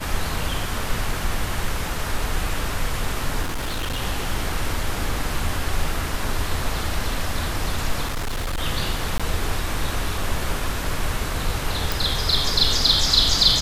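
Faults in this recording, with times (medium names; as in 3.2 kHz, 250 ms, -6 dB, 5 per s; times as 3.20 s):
3.42–4.00 s: clipped -22 dBFS
8.05–8.60 s: clipped -22 dBFS
9.18–9.20 s: dropout 16 ms
11.92 s: pop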